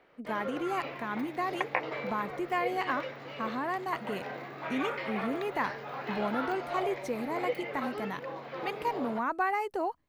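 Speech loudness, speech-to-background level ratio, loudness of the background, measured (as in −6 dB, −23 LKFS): −34.5 LKFS, 3.5 dB, −38.0 LKFS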